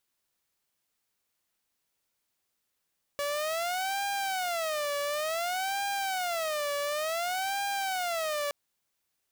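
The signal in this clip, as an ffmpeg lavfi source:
ffmpeg -f lavfi -i "aevalsrc='0.0473*(2*mod((687.5*t-113.5/(2*PI*0.56)*sin(2*PI*0.56*t)),1)-1)':duration=5.32:sample_rate=44100" out.wav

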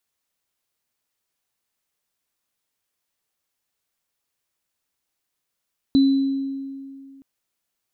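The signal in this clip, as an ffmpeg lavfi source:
ffmpeg -f lavfi -i "aevalsrc='0.282*pow(10,-3*t/2.3)*sin(2*PI*272*t)+0.0376*pow(10,-3*t/1.01)*sin(2*PI*4000*t)':duration=1.27:sample_rate=44100" out.wav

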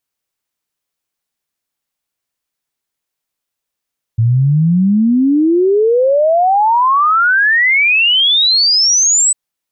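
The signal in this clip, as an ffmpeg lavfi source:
ffmpeg -f lavfi -i "aevalsrc='0.398*clip(min(t,5.15-t)/0.01,0,1)*sin(2*PI*110*5.15/log(8100/110)*(exp(log(8100/110)*t/5.15)-1))':duration=5.15:sample_rate=44100" out.wav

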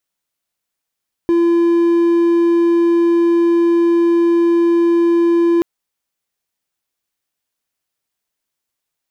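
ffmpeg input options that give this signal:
ffmpeg -f lavfi -i "aevalsrc='0.398*(1-4*abs(mod(340*t+0.25,1)-0.5))':duration=4.33:sample_rate=44100" out.wav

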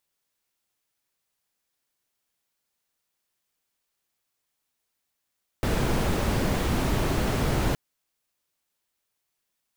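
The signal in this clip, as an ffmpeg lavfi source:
ffmpeg -f lavfi -i "anoisesrc=color=brown:amplitude=0.295:duration=2.12:sample_rate=44100:seed=1" out.wav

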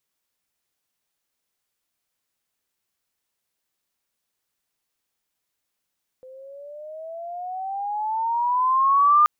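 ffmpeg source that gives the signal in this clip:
ffmpeg -f lavfi -i "aevalsrc='pow(10,(-11.5+29*(t/3.03-1))/20)*sin(2*PI*511*3.03/(15*log(2)/12)*(exp(15*log(2)/12*t/3.03)-1))':duration=3.03:sample_rate=44100" out.wav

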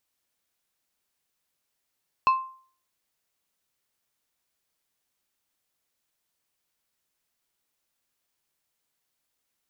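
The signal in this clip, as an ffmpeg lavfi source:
ffmpeg -f lavfi -i "aevalsrc='0.2*pow(10,-3*t/0.47)*sin(2*PI*1050*t)+0.0531*pow(10,-3*t/0.247)*sin(2*PI*2625*t)+0.0141*pow(10,-3*t/0.178)*sin(2*PI*4200*t)+0.00376*pow(10,-3*t/0.152)*sin(2*PI*5250*t)+0.001*pow(10,-3*t/0.127)*sin(2*PI*6825*t)':duration=0.89:sample_rate=44100" out.wav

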